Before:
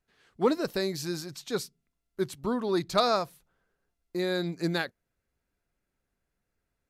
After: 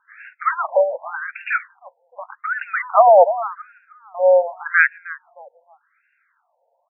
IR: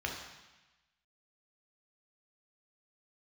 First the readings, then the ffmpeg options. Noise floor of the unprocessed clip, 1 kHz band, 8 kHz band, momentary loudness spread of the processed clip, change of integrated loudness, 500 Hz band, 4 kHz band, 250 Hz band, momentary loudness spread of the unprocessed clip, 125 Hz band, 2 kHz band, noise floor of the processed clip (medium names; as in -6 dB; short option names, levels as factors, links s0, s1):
-83 dBFS, +16.0 dB, under -35 dB, 19 LU, +12.5 dB, +13.0 dB, under -20 dB, under -35 dB, 12 LU, under -40 dB, +18.5 dB, -68 dBFS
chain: -filter_complex "[0:a]asplit=2[s0][s1];[s1]adelay=309,lowpass=f=1300:p=1,volume=0.106,asplit=2[s2][s3];[s3]adelay=309,lowpass=f=1300:p=1,volume=0.41,asplit=2[s4][s5];[s5]adelay=309,lowpass=f=1300:p=1,volume=0.41[s6];[s0][s2][s4][s6]amix=inputs=4:normalize=0,alimiter=level_in=13.3:limit=0.891:release=50:level=0:latency=1,afftfilt=real='re*between(b*sr/1024,650*pow(2000/650,0.5+0.5*sin(2*PI*0.86*pts/sr))/1.41,650*pow(2000/650,0.5+0.5*sin(2*PI*0.86*pts/sr))*1.41)':imag='im*between(b*sr/1024,650*pow(2000/650,0.5+0.5*sin(2*PI*0.86*pts/sr))/1.41,650*pow(2000/650,0.5+0.5*sin(2*PI*0.86*pts/sr))*1.41)':win_size=1024:overlap=0.75,volume=1.58"